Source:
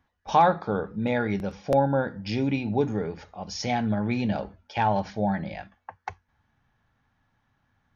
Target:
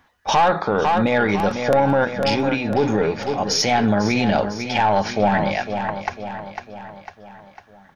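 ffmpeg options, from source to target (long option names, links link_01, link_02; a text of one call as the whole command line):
ffmpeg -i in.wav -filter_complex "[0:a]lowshelf=frequency=260:gain=-11.5,asplit=3[link_01][link_02][link_03];[link_01]afade=type=out:start_time=2.04:duration=0.02[link_04];[link_02]acompressor=threshold=-34dB:ratio=6,afade=type=in:start_time=2.04:duration=0.02,afade=type=out:start_time=2.76:duration=0.02[link_05];[link_03]afade=type=in:start_time=2.76:duration=0.02[link_06];[link_04][link_05][link_06]amix=inputs=3:normalize=0,aeval=exprs='(tanh(7.94*val(0)+0.3)-tanh(0.3))/7.94':channel_layout=same,asplit=2[link_07][link_08];[link_08]aecho=0:1:501|1002|1503|2004|2505:0.251|0.131|0.0679|0.0353|0.0184[link_09];[link_07][link_09]amix=inputs=2:normalize=0,alimiter=level_in=24dB:limit=-1dB:release=50:level=0:latency=1,volume=-7.5dB" out.wav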